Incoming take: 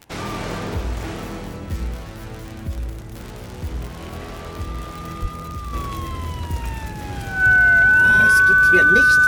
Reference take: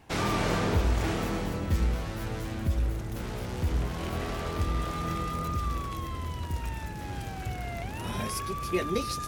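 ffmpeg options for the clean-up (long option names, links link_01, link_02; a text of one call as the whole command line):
ffmpeg -i in.wav -filter_complex "[0:a]adeclick=threshold=4,bandreject=frequency=1500:width=30,asplit=3[link_01][link_02][link_03];[link_01]afade=type=out:start_time=5.21:duration=0.02[link_04];[link_02]highpass=frequency=140:width=0.5412,highpass=frequency=140:width=1.3066,afade=type=in:start_time=5.21:duration=0.02,afade=type=out:start_time=5.33:duration=0.02[link_05];[link_03]afade=type=in:start_time=5.33:duration=0.02[link_06];[link_04][link_05][link_06]amix=inputs=3:normalize=0,asetnsamples=nb_out_samples=441:pad=0,asendcmd='5.73 volume volume -7dB',volume=0dB" out.wav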